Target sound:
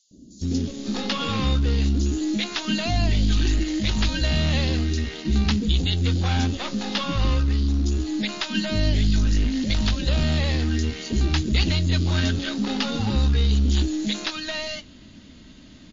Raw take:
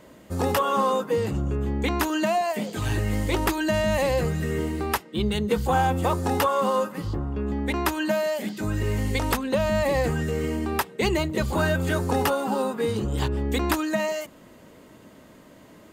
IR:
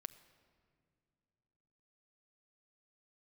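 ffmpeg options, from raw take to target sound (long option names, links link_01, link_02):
-filter_complex "[0:a]asubboost=boost=3:cutoff=110,aresample=16000,asoftclip=type=tanh:threshold=-20.5dB,aresample=44100,acrossover=split=430|5800[link_01][link_02][link_03];[link_01]adelay=110[link_04];[link_02]adelay=550[link_05];[link_04][link_05][link_03]amix=inputs=3:normalize=0,asplit=2[link_06][link_07];[link_07]acrusher=bits=3:dc=4:mix=0:aa=0.000001,volume=-10dB[link_08];[link_06][link_08]amix=inputs=2:normalize=0,equalizer=frequency=125:width_type=o:width=1:gain=-6,equalizer=frequency=250:width_type=o:width=1:gain=7,equalizer=frequency=500:width_type=o:width=1:gain=-10,equalizer=frequency=1000:width_type=o:width=1:gain=-11,equalizer=frequency=2000:width_type=o:width=1:gain=-4,equalizer=frequency=4000:width_type=o:width=1:gain=9,volume=5.5dB" -ar 16000 -c:a libmp3lame -b:a 32k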